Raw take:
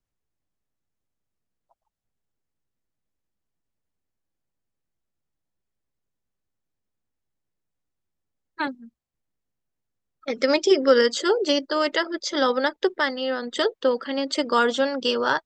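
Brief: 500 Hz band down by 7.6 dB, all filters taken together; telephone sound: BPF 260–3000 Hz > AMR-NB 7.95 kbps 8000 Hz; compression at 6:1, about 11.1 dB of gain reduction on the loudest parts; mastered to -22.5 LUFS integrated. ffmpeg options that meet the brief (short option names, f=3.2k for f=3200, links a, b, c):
-af "equalizer=f=500:t=o:g=-8.5,acompressor=threshold=-29dB:ratio=6,highpass=260,lowpass=3k,volume=13.5dB" -ar 8000 -c:a libopencore_amrnb -b:a 7950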